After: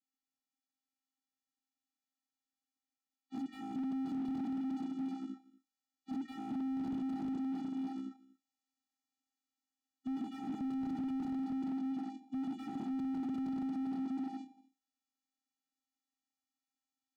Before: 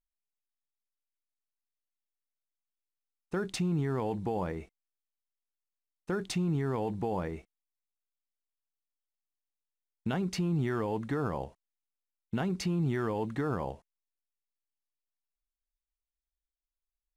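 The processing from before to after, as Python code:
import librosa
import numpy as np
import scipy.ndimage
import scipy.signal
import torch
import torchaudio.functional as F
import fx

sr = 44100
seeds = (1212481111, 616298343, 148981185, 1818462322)

p1 = fx.partial_stretch(x, sr, pct=77)
p2 = fx.sample_hold(p1, sr, seeds[0], rate_hz=3200.0, jitter_pct=0)
p3 = p1 + (p2 * 10.0 ** (-5.0 / 20.0))
p4 = fx.dynamic_eq(p3, sr, hz=150.0, q=1.4, threshold_db=-41.0, ratio=4.0, max_db=6)
p5 = fx.rider(p4, sr, range_db=10, speed_s=2.0)
p6 = fx.high_shelf(p5, sr, hz=2500.0, db=10.0)
p7 = p6 + fx.echo_multitap(p6, sr, ms=(396, 636, 718), db=(-7.0, -19.0, -7.5), dry=0)
p8 = fx.tube_stage(p7, sr, drive_db=24.0, bias=0.4)
p9 = fx.vocoder(p8, sr, bands=16, carrier='square', carrier_hz=265.0)
p10 = p9 + 10.0 ** (-22.5 / 20.0) * np.pad(p9, (int(239 * sr / 1000.0), 0))[:len(p9)]
y = fx.slew_limit(p10, sr, full_power_hz=4.6)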